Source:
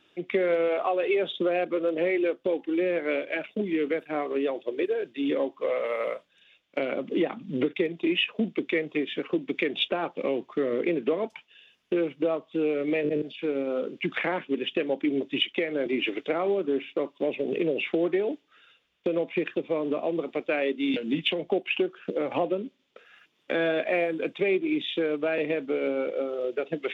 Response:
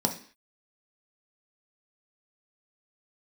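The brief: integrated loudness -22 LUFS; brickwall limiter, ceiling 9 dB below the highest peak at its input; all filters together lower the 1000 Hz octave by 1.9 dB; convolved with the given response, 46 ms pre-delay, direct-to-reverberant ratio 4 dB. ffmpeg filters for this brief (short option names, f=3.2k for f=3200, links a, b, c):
-filter_complex "[0:a]equalizer=f=1k:t=o:g=-3,alimiter=limit=-20.5dB:level=0:latency=1,asplit=2[a][b];[1:a]atrim=start_sample=2205,adelay=46[c];[b][c]afir=irnorm=-1:irlink=0,volume=-13dB[d];[a][d]amix=inputs=2:normalize=0,volume=5.5dB"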